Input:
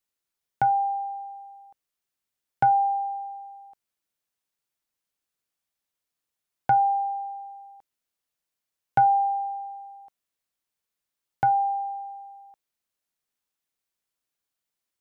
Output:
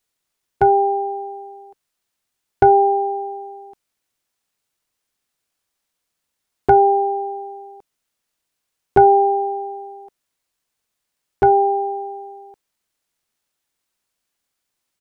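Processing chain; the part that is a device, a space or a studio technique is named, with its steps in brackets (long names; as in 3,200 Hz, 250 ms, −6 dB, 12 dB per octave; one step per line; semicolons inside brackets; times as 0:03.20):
octave pedal (pitch-shifted copies added −12 semitones −2 dB)
level +6 dB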